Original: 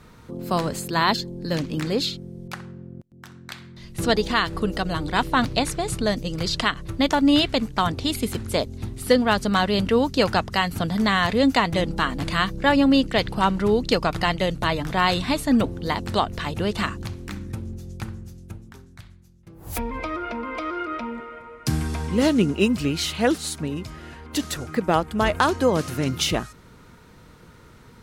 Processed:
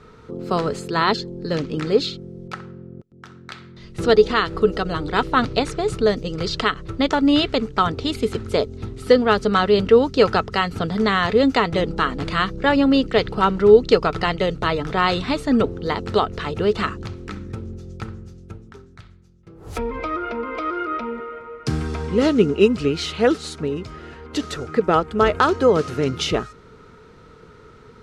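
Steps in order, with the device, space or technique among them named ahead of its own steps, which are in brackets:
inside a cardboard box (low-pass filter 5,900 Hz 12 dB per octave; hollow resonant body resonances 430/1,300 Hz, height 12 dB, ringing for 45 ms)

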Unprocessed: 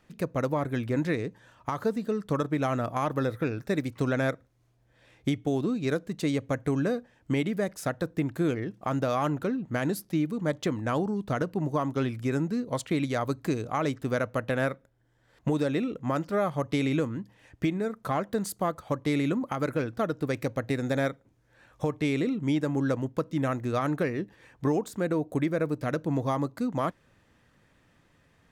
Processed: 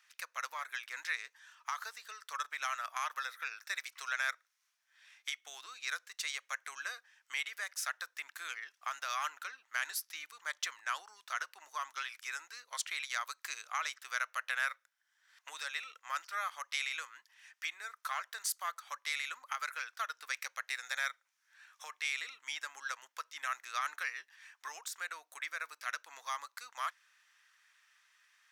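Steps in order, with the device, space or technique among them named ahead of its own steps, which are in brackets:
headphones lying on a table (high-pass filter 1,300 Hz 24 dB per octave; parametric band 5,700 Hz +6 dB 0.29 octaves)
level +1 dB

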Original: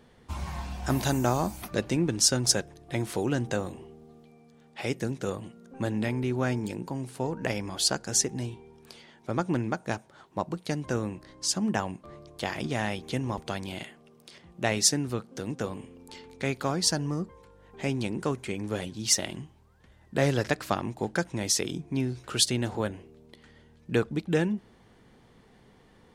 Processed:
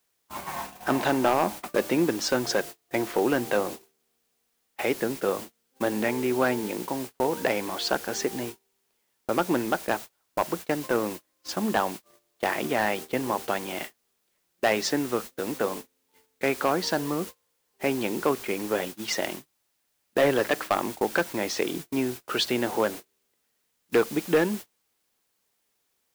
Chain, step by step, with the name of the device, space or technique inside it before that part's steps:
aircraft radio (band-pass filter 340–2,400 Hz; hard clipping −22.5 dBFS, distortion −14 dB; white noise bed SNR 13 dB; noise gate −42 dBFS, range −33 dB)
level +8 dB

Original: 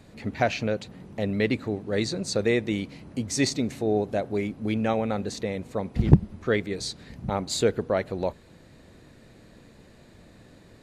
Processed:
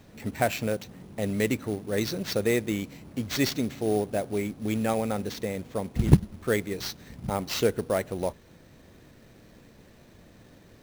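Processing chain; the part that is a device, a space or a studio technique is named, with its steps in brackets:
early companding sampler (sample-rate reduction 10,000 Hz, jitter 0%; log-companded quantiser 6 bits)
level −1.5 dB

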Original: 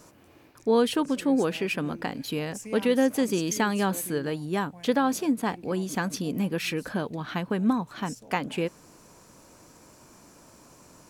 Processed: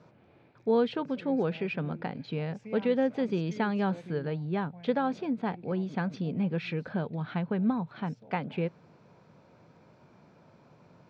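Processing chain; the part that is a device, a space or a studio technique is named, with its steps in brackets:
guitar cabinet (loudspeaker in its box 100–3,400 Hz, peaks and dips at 110 Hz +5 dB, 160 Hz +6 dB, 300 Hz −7 dB, 1,100 Hz −6 dB, 1,800 Hz −5 dB, 2,900 Hz −7 dB)
level −2.5 dB

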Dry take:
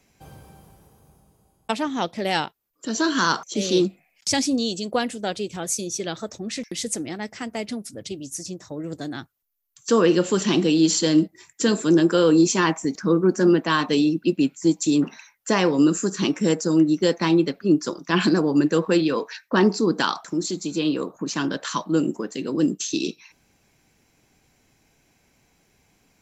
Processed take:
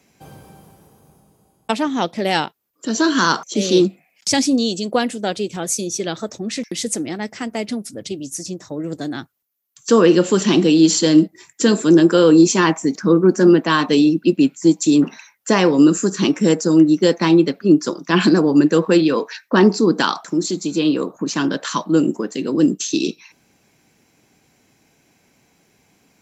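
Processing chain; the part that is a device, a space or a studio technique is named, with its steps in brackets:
filter by subtraction (in parallel: low-pass filter 210 Hz 12 dB per octave + polarity inversion)
on the sum: level +4 dB

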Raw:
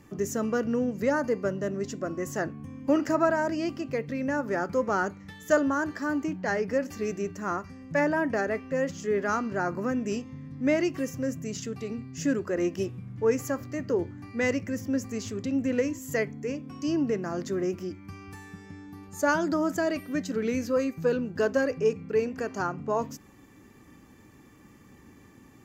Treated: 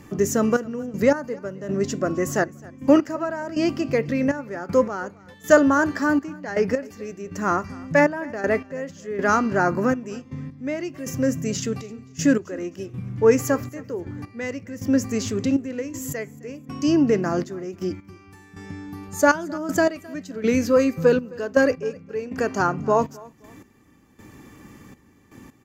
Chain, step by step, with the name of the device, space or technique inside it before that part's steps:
trance gate with a delay (gate pattern "xxx..x...x" 80 BPM −12 dB; repeating echo 262 ms, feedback 29%, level −23 dB)
level +8.5 dB

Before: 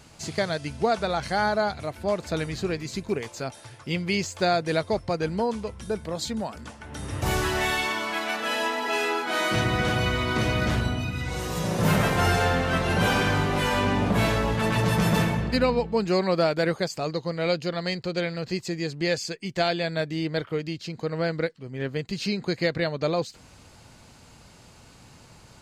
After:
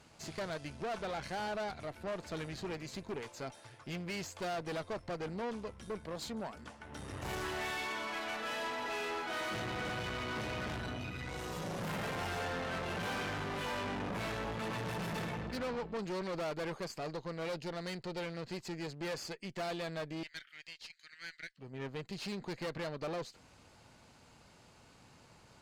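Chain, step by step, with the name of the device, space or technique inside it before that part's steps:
0:20.23–0:21.57: Butterworth high-pass 1,600 Hz 48 dB per octave
tube preamp driven hard (tube saturation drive 30 dB, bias 0.6; low-shelf EQ 190 Hz −6.5 dB; high-shelf EQ 4,400 Hz −6.5 dB)
level −4 dB

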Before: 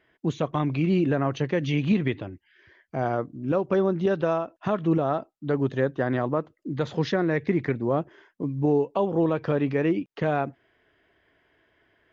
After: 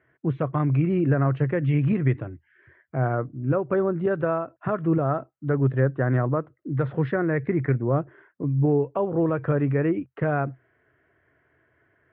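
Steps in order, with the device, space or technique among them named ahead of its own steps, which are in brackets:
bass cabinet (loudspeaker in its box 65–2,100 Hz, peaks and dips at 82 Hz +7 dB, 130 Hz +10 dB, 200 Hz −4 dB, 860 Hz −4 dB, 1,400 Hz +4 dB)

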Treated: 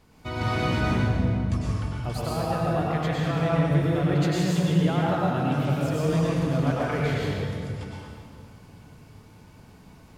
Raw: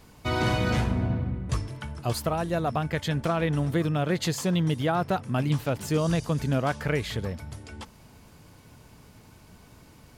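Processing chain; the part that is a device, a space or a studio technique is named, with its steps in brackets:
swimming-pool hall (convolution reverb RT60 2.2 s, pre-delay 94 ms, DRR −6 dB; high-shelf EQ 5,700 Hz −6 dB)
level −5.5 dB

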